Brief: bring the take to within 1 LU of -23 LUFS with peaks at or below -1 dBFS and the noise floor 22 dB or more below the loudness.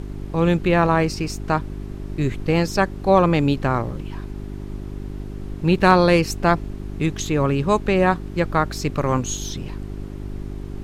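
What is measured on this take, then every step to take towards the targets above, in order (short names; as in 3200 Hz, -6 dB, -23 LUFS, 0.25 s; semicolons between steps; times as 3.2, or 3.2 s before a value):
hum 50 Hz; harmonics up to 400 Hz; hum level -30 dBFS; noise floor -34 dBFS; noise floor target -43 dBFS; loudness -20.5 LUFS; peak -2.5 dBFS; loudness target -23.0 LUFS
-> de-hum 50 Hz, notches 8; noise print and reduce 9 dB; gain -2.5 dB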